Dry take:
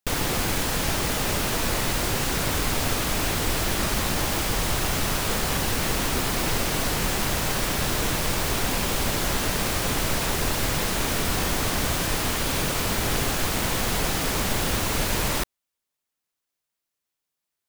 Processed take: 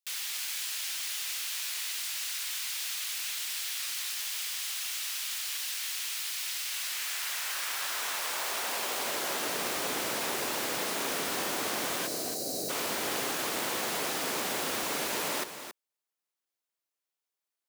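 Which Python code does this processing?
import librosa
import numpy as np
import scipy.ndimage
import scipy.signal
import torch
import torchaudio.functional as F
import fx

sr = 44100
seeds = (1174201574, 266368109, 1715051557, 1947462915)

y = fx.spec_box(x, sr, start_s=12.07, length_s=0.63, low_hz=780.0, high_hz=3800.0, gain_db=-21)
y = y + 10.0 ** (-10.0 / 20.0) * np.pad(y, (int(275 * sr / 1000.0), 0))[:len(y)]
y = fx.filter_sweep_highpass(y, sr, from_hz=2700.0, to_hz=330.0, start_s=6.58, end_s=9.62, q=0.87)
y = y * 10.0 ** (-6.0 / 20.0)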